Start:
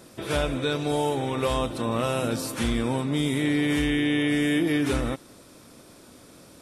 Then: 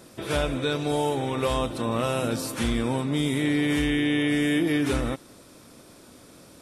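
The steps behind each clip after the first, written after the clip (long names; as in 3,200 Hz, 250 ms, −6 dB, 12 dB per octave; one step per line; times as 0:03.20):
no processing that can be heard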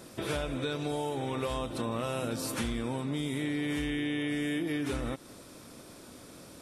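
downward compressor 6 to 1, threshold −30 dBFS, peak gain reduction 9.5 dB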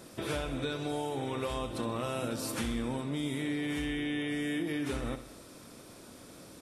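repeating echo 64 ms, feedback 57%, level −12 dB
level −1.5 dB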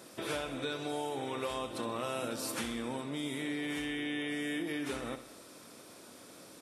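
high-pass filter 320 Hz 6 dB per octave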